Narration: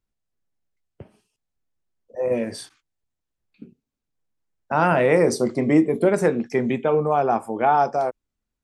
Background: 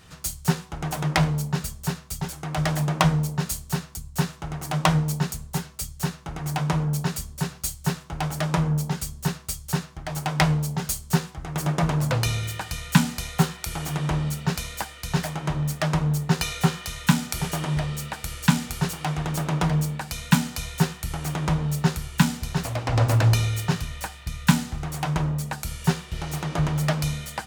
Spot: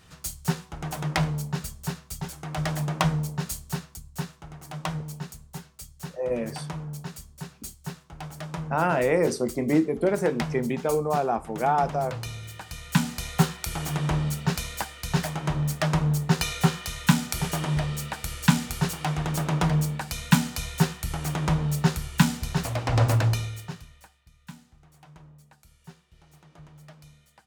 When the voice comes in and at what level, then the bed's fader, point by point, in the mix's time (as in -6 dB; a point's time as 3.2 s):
4.00 s, -5.0 dB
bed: 3.7 s -4 dB
4.54 s -11 dB
12.38 s -11 dB
13.34 s -0.5 dB
23.08 s -0.5 dB
24.3 s -25.5 dB